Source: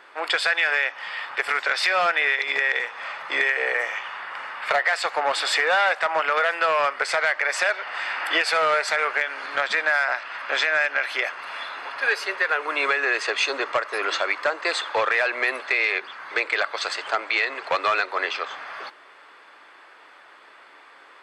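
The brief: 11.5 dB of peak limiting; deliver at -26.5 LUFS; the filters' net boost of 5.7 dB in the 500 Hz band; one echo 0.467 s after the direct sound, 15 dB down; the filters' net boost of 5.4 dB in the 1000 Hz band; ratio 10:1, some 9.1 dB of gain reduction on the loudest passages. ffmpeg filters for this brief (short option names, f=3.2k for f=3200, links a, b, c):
-af "equalizer=f=500:t=o:g=5,equalizer=f=1k:t=o:g=6,acompressor=threshold=-21dB:ratio=10,alimiter=limit=-19dB:level=0:latency=1,aecho=1:1:467:0.178,volume=2dB"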